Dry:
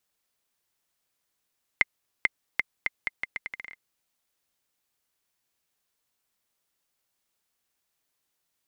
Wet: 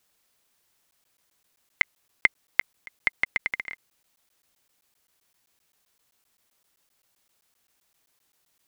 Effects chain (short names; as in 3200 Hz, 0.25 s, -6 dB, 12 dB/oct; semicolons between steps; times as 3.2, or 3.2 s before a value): in parallel at 0 dB: limiter -17 dBFS, peak gain reduction 11 dB; on the sum: crackling interface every 0.13 s, samples 512, zero, from 0.91; gain +2.5 dB